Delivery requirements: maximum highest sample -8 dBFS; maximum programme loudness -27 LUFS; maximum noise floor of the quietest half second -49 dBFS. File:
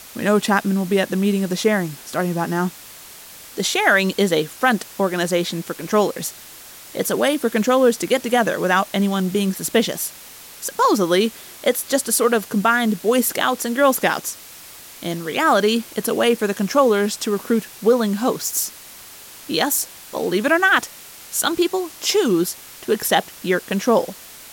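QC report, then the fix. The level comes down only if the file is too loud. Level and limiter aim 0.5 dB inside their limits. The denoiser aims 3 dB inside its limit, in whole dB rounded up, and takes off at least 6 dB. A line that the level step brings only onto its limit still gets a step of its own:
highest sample -4.5 dBFS: fail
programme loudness -19.5 LUFS: fail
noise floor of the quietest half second -41 dBFS: fail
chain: noise reduction 6 dB, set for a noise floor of -41 dBFS; trim -8 dB

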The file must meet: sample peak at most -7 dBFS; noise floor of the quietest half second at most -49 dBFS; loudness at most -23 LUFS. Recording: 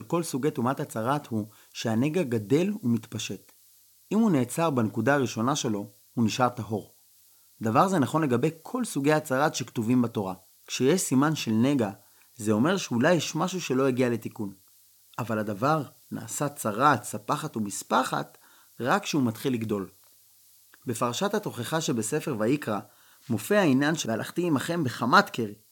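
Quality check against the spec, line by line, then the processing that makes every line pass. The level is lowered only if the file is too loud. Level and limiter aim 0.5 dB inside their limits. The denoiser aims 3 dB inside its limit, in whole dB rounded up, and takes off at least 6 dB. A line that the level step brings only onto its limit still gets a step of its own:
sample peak -5.0 dBFS: fail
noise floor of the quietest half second -59 dBFS: pass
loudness -27.0 LUFS: pass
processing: peak limiter -7.5 dBFS

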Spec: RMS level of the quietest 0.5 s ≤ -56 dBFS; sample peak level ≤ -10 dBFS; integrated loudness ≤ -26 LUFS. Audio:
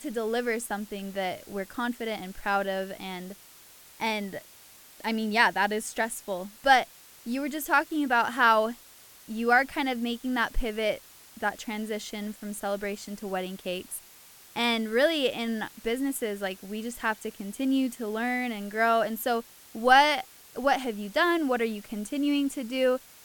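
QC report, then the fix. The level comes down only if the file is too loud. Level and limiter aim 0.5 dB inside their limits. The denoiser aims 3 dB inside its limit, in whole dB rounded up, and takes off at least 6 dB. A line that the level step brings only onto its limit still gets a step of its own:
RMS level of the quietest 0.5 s -52 dBFS: fail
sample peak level -6.0 dBFS: fail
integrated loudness -28.0 LUFS: pass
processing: noise reduction 7 dB, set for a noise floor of -52 dBFS; peak limiter -10.5 dBFS

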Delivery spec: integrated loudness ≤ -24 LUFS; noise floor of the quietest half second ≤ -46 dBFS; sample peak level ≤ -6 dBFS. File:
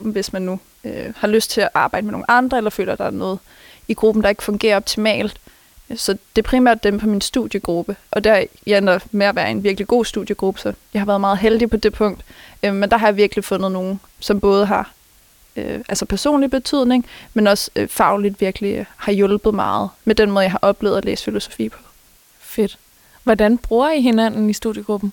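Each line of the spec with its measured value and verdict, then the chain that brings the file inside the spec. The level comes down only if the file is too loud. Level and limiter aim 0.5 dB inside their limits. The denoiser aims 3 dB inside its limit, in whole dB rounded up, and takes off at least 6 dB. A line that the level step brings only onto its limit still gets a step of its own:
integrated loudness -17.5 LUFS: fail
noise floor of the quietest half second -51 dBFS: pass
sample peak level -2.0 dBFS: fail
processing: trim -7 dB

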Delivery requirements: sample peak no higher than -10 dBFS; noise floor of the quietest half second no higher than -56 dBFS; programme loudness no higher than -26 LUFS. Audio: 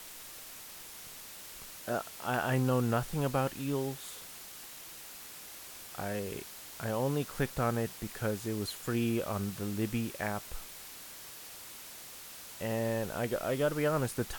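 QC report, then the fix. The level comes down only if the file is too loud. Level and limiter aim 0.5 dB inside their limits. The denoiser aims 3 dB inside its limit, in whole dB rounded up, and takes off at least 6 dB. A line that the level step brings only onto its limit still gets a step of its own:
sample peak -17.0 dBFS: pass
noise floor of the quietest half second -48 dBFS: fail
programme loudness -35.5 LUFS: pass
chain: noise reduction 11 dB, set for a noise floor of -48 dBFS

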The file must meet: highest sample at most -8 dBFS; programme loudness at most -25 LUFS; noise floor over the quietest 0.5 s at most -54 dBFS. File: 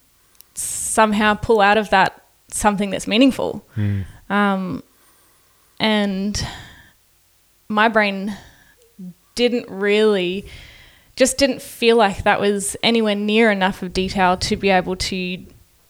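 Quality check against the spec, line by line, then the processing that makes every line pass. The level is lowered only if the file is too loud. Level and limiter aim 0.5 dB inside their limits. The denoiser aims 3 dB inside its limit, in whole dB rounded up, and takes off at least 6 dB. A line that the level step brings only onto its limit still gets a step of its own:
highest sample -2.0 dBFS: fail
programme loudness -18.5 LUFS: fail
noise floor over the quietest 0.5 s -58 dBFS: pass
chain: trim -7 dB

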